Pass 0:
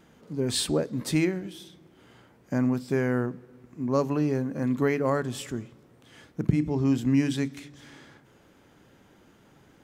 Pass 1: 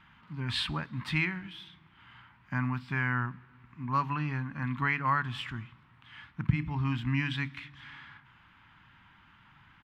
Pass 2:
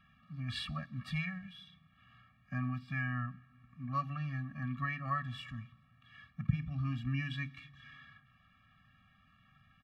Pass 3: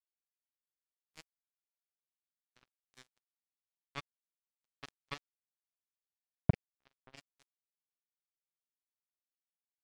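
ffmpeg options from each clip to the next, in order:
ffmpeg -i in.wav -af "firequalizer=gain_entry='entry(110,0);entry(470,-26);entry(950,5);entry(2800,5);entry(6400,-20)':delay=0.05:min_phase=1" out.wav
ffmpeg -i in.wav -af "afftfilt=real='re*eq(mod(floor(b*sr/1024/270),2),0)':imag='im*eq(mod(floor(b*sr/1024/270),2),0)':win_size=1024:overlap=0.75,volume=-4.5dB" out.wav
ffmpeg -i in.wav -af "acrusher=bits=3:mix=0:aa=0.5,volume=2.5dB" out.wav

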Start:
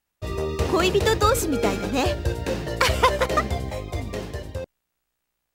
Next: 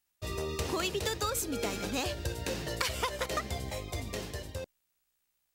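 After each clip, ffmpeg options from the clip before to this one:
ffmpeg -i in.wav -af "highshelf=frequency=2500:gain=10.5,acompressor=threshold=-22dB:ratio=4,volume=-8dB" out.wav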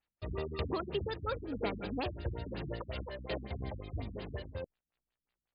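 ffmpeg -i in.wav -af "tremolo=f=3:d=0.34,afftfilt=real='re*lt(b*sr/1024,270*pow(5100/270,0.5+0.5*sin(2*PI*5.5*pts/sr)))':imag='im*lt(b*sr/1024,270*pow(5100/270,0.5+0.5*sin(2*PI*5.5*pts/sr)))':win_size=1024:overlap=0.75" out.wav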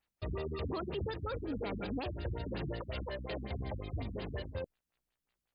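ffmpeg -i in.wav -af "alimiter=level_in=9dB:limit=-24dB:level=0:latency=1:release=17,volume=-9dB,volume=3dB" out.wav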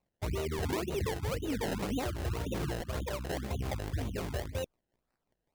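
ffmpeg -i in.wav -af "acrusher=samples=26:mix=1:aa=0.000001:lfo=1:lforange=26:lforate=1.9,volume=4dB" out.wav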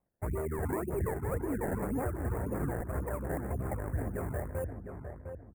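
ffmpeg -i in.wav -filter_complex "[0:a]asuperstop=centerf=4100:order=8:qfactor=0.63,asplit=2[link_01][link_02];[link_02]adelay=706,lowpass=frequency=1800:poles=1,volume=-7dB,asplit=2[link_03][link_04];[link_04]adelay=706,lowpass=frequency=1800:poles=1,volume=0.33,asplit=2[link_05][link_06];[link_06]adelay=706,lowpass=frequency=1800:poles=1,volume=0.33,asplit=2[link_07][link_08];[link_08]adelay=706,lowpass=frequency=1800:poles=1,volume=0.33[link_09];[link_03][link_05][link_07][link_09]amix=inputs=4:normalize=0[link_10];[link_01][link_10]amix=inputs=2:normalize=0" out.wav

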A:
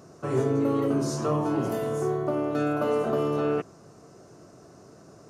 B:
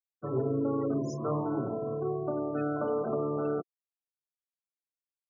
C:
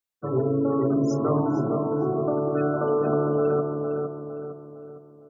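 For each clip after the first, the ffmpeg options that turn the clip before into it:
ffmpeg -i in.wav -af "afftfilt=real='re*gte(hypot(re,im),0.0398)':imag='im*gte(hypot(re,im),0.0398)':win_size=1024:overlap=0.75,volume=-5dB" out.wav
ffmpeg -i in.wav -filter_complex "[0:a]asplit=2[link_01][link_02];[link_02]adelay=458,lowpass=frequency=1800:poles=1,volume=-4dB,asplit=2[link_03][link_04];[link_04]adelay=458,lowpass=frequency=1800:poles=1,volume=0.46,asplit=2[link_05][link_06];[link_06]adelay=458,lowpass=frequency=1800:poles=1,volume=0.46,asplit=2[link_07][link_08];[link_08]adelay=458,lowpass=frequency=1800:poles=1,volume=0.46,asplit=2[link_09][link_10];[link_10]adelay=458,lowpass=frequency=1800:poles=1,volume=0.46,asplit=2[link_11][link_12];[link_12]adelay=458,lowpass=frequency=1800:poles=1,volume=0.46[link_13];[link_01][link_03][link_05][link_07][link_09][link_11][link_13]amix=inputs=7:normalize=0,volume=6dB" out.wav

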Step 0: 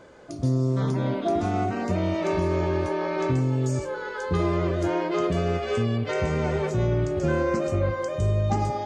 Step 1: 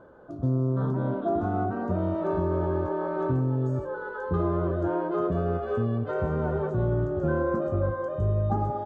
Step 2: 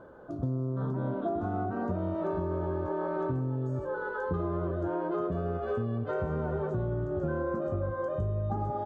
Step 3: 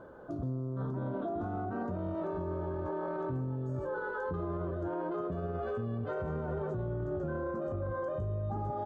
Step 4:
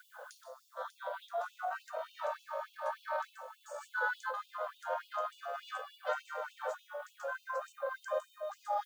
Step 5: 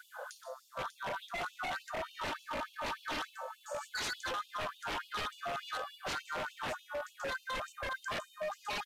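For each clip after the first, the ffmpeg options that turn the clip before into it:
ffmpeg -i in.wav -af "firequalizer=gain_entry='entry(1500,0);entry(2100,-22);entry(3400,-15);entry(5000,-25)':delay=0.05:min_phase=1,volume=-2dB" out.wav
ffmpeg -i in.wav -af "acompressor=threshold=-29dB:ratio=6,volume=1dB" out.wav
ffmpeg -i in.wav -af "alimiter=level_in=4.5dB:limit=-24dB:level=0:latency=1:release=19,volume=-4.5dB" out.wav
ffmpeg -i in.wav -af "crystalizer=i=5.5:c=0,afftfilt=real='re*gte(b*sr/1024,460*pow(2600/460,0.5+0.5*sin(2*PI*3.4*pts/sr)))':imag='im*gte(b*sr/1024,460*pow(2600/460,0.5+0.5*sin(2*PI*3.4*pts/sr)))':win_size=1024:overlap=0.75,volume=4dB" out.wav
ffmpeg -i in.wav -af "aeval=exprs='0.0141*(abs(mod(val(0)/0.0141+3,4)-2)-1)':channel_layout=same,aresample=32000,aresample=44100,volume=5dB" out.wav

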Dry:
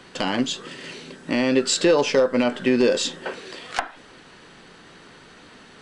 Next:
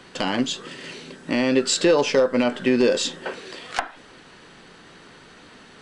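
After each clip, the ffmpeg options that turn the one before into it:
ffmpeg -i in.wav -af anull out.wav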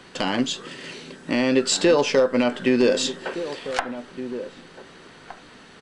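ffmpeg -i in.wav -filter_complex "[0:a]asplit=2[link_01][link_02];[link_02]adelay=1516,volume=-12dB,highshelf=frequency=4000:gain=-34.1[link_03];[link_01][link_03]amix=inputs=2:normalize=0" out.wav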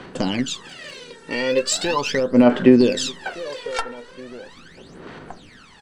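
ffmpeg -i in.wav -af "aphaser=in_gain=1:out_gain=1:delay=2.2:decay=0.78:speed=0.39:type=sinusoidal,volume=-3dB" out.wav

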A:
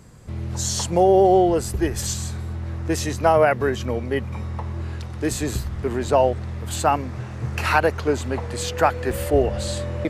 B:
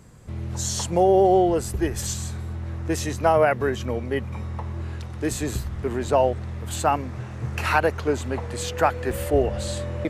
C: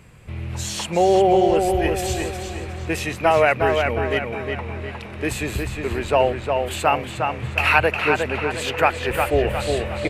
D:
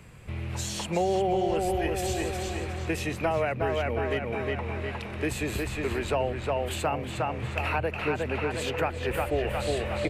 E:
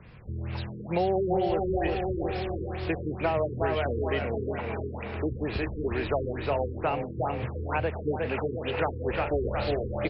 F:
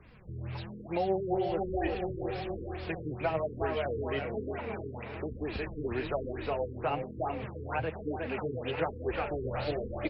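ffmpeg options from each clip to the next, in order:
ffmpeg -i in.wav -af "equalizer=frequency=4700:width=3.6:gain=-2.5,volume=-2dB" out.wav
ffmpeg -i in.wav -filter_complex "[0:a]equalizer=frequency=250:width_type=o:width=0.67:gain=-4,equalizer=frequency=2500:width_type=o:width=0.67:gain=12,equalizer=frequency=6300:width_type=o:width=0.67:gain=-6,asplit=2[link_01][link_02];[link_02]adelay=359,lowpass=frequency=4900:poles=1,volume=-4.5dB,asplit=2[link_03][link_04];[link_04]adelay=359,lowpass=frequency=4900:poles=1,volume=0.47,asplit=2[link_05][link_06];[link_06]adelay=359,lowpass=frequency=4900:poles=1,volume=0.47,asplit=2[link_07][link_08];[link_08]adelay=359,lowpass=frequency=4900:poles=1,volume=0.47,asplit=2[link_09][link_10];[link_10]adelay=359,lowpass=frequency=4900:poles=1,volume=0.47,asplit=2[link_11][link_12];[link_12]adelay=359,lowpass=frequency=4900:poles=1,volume=0.47[link_13];[link_01][link_03][link_05][link_07][link_09][link_11][link_13]amix=inputs=7:normalize=0,volume=1.5dB" out.wav
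ffmpeg -i in.wav -filter_complex "[0:a]acrossover=split=250|750[link_01][link_02][link_03];[link_01]acompressor=threshold=-30dB:ratio=4[link_04];[link_02]acompressor=threshold=-28dB:ratio=4[link_05];[link_03]acompressor=threshold=-32dB:ratio=4[link_06];[link_04][link_05][link_06]amix=inputs=3:normalize=0,volume=-1.5dB" out.wav
ffmpeg -i in.wav -af "aecho=1:1:394|788|1182|1576|1970|2364|2758:0.316|0.19|0.114|0.0683|0.041|0.0246|0.0148,afftfilt=real='re*lt(b*sr/1024,470*pow(5600/470,0.5+0.5*sin(2*PI*2.2*pts/sr)))':imag='im*lt(b*sr/1024,470*pow(5600/470,0.5+0.5*sin(2*PI*2.2*pts/sr)))':win_size=1024:overlap=0.75" out.wav
ffmpeg -i in.wav -af "flanger=delay=2.4:depth=6.2:regen=27:speed=1.1:shape=triangular,volume=-1dB" out.wav

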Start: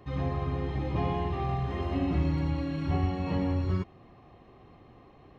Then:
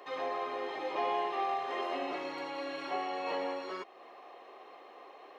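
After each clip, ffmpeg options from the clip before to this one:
ffmpeg -i in.wav -filter_complex "[0:a]asplit=2[link_01][link_02];[link_02]acompressor=threshold=-37dB:ratio=6,volume=2dB[link_03];[link_01][link_03]amix=inputs=2:normalize=0,highpass=frequency=450:width=0.5412,highpass=frequency=450:width=1.3066" out.wav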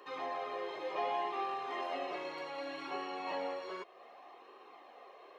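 ffmpeg -i in.wav -af "flanger=delay=0.7:depth=1.2:regen=-51:speed=0.66:shape=sinusoidal,volume=1dB" out.wav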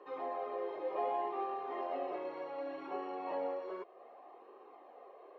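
ffmpeg -i in.wav -af "bandpass=frequency=460:width_type=q:width=0.85:csg=0,volume=2.5dB" out.wav

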